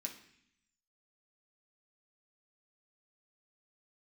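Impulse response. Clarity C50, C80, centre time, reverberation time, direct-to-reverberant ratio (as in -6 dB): 9.0 dB, 12.5 dB, 18 ms, 0.65 s, 0.0 dB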